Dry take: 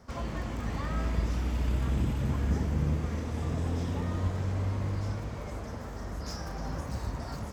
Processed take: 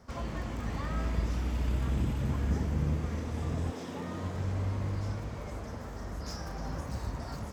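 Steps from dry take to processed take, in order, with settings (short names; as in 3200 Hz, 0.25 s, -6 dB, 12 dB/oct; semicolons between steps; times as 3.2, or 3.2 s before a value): 3.7–4.35 HPF 350 Hz -> 100 Hz 12 dB/oct; gain -1.5 dB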